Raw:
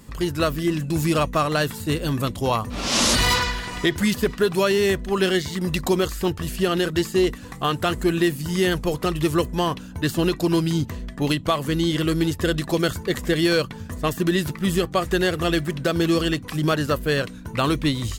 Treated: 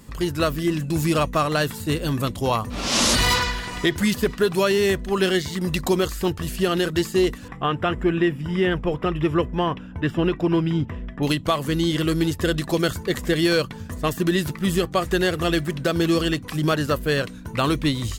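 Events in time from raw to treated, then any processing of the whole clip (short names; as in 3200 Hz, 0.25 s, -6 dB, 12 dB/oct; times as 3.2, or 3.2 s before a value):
7.48–11.23 polynomial smoothing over 25 samples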